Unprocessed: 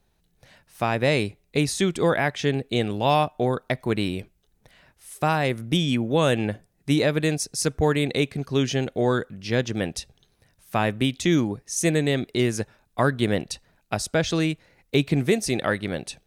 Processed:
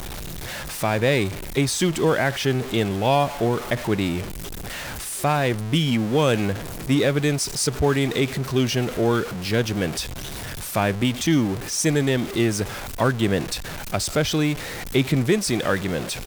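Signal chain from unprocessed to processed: zero-crossing step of -26.5 dBFS; pitch shift -1 st

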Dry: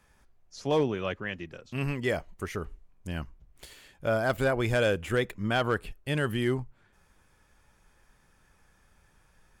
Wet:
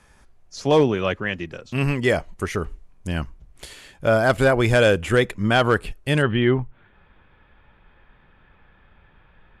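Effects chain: steep low-pass 12000 Hz 48 dB/oct, from 6.21 s 3600 Hz; gain +9 dB

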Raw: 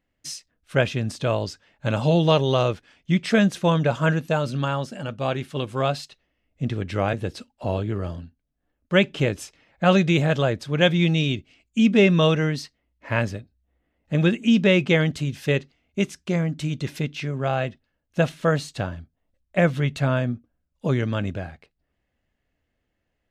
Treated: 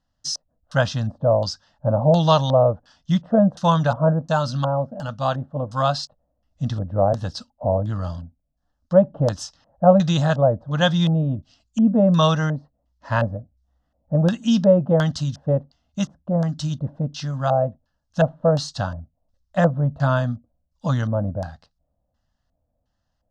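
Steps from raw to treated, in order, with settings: dynamic EQ 1100 Hz, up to +3 dB, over -33 dBFS, Q 0.82; LFO low-pass square 1.4 Hz 570–5300 Hz; fixed phaser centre 950 Hz, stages 4; gain +4 dB

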